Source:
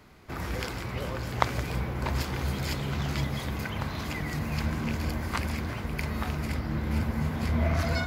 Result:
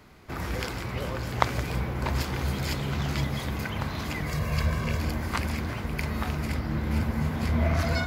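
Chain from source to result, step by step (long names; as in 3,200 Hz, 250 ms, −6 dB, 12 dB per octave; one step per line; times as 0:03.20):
0:04.26–0:05.00: comb filter 1.8 ms, depth 65%
level +1.5 dB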